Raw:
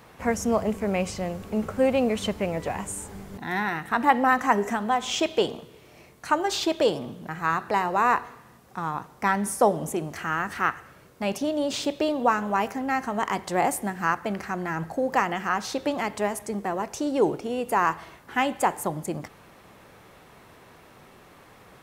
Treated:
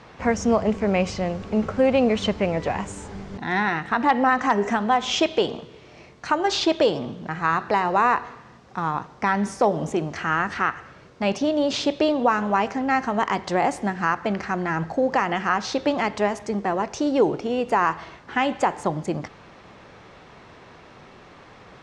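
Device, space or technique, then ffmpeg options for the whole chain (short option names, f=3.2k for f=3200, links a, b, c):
clipper into limiter: -af "asoftclip=type=hard:threshold=-9dB,alimiter=limit=-13.5dB:level=0:latency=1:release=128,lowpass=f=6.1k:w=0.5412,lowpass=f=6.1k:w=1.3066,volume=4.5dB"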